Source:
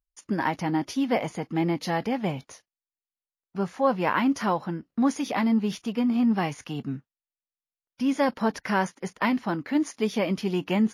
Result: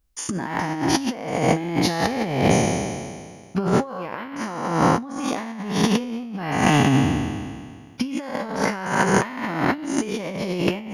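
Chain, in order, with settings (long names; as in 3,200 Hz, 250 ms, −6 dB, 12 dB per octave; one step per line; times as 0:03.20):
peak hold with a decay on every bin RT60 1.91 s
parametric band 71 Hz +7.5 dB 1.1 octaves
compressor whose output falls as the input rises −28 dBFS, ratio −0.5
level +6.5 dB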